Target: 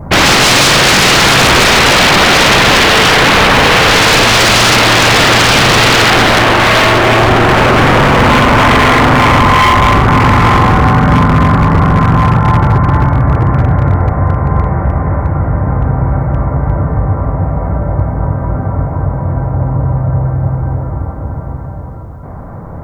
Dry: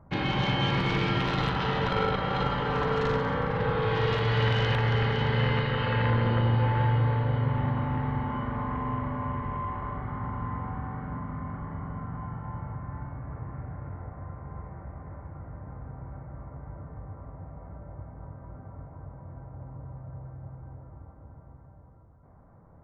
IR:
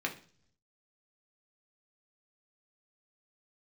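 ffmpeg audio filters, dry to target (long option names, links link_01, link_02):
-af "apsyclip=23.5dB,adynamicequalizer=threshold=0.0501:dfrequency=1300:dqfactor=1.9:tfrequency=1300:tqfactor=1.9:attack=5:release=100:ratio=0.375:range=1.5:mode=boostabove:tftype=bell,aeval=exprs='0.422*(abs(mod(val(0)/0.422+3,4)-2)-1)':channel_layout=same,volume=5.5dB"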